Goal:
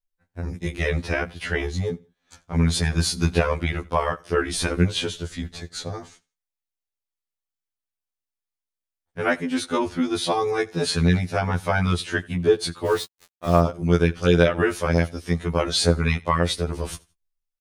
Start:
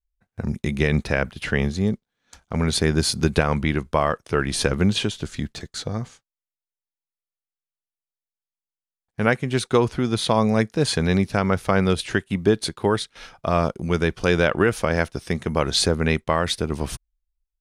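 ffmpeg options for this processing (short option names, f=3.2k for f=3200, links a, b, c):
-filter_complex "[0:a]aecho=1:1:84|168:0.0631|0.0177,asettb=1/sr,asplit=3[a][b][c];[a]atrim=end=12.864[d];[b]atrim=start=12.86:end=13.6,asetpts=PTS-STARTPTS,afade=t=in:d=0.004:c=qsin,afade=t=out:st=0.736:d=0.004:c=qsin,aeval=exprs='val(0)*gte(abs(val(0)),0.0299)':c=same[e];[c]atrim=start=13.596[f];[d][e]acrossfade=d=0.004:c1=hsin:c2=qsin[g];[g][f]acrossfade=d=0.004:c1=qsin:c2=hsin,afftfilt=real='re*2*eq(mod(b,4),0)':imag='im*2*eq(mod(b,4),0)':win_size=2048:overlap=0.75,volume=1dB"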